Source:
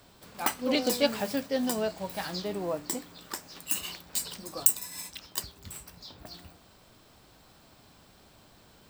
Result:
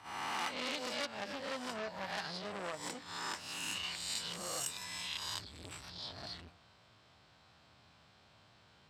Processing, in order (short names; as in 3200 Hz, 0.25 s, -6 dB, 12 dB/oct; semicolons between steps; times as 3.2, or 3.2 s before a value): spectral swells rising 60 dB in 0.98 s; HPF 74 Hz 24 dB/oct; gate -46 dBFS, range -8 dB; LPF 4300 Hz 12 dB/oct; bell 320 Hz -9.5 dB 2 oct; 0.51–3.09 transient shaper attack +11 dB, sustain -4 dB; compressor 2.5:1, threshold -39 dBFS, peak gain reduction 14 dB; core saturation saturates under 4000 Hz; gain +3 dB